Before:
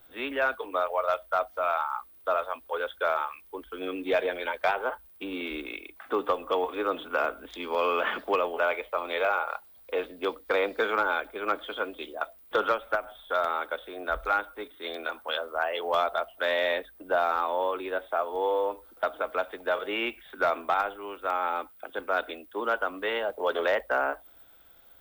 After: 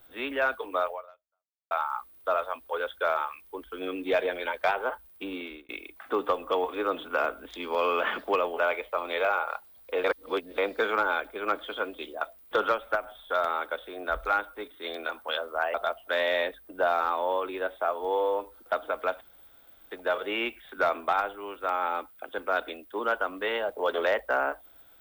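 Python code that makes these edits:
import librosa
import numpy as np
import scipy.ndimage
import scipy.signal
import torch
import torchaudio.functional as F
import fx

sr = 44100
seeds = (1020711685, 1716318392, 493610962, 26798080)

y = fx.edit(x, sr, fx.fade_out_span(start_s=0.89, length_s=0.82, curve='exp'),
    fx.fade_out_span(start_s=5.28, length_s=0.41),
    fx.reverse_span(start_s=10.04, length_s=0.54),
    fx.cut(start_s=15.74, length_s=0.31),
    fx.insert_room_tone(at_s=19.52, length_s=0.7), tone=tone)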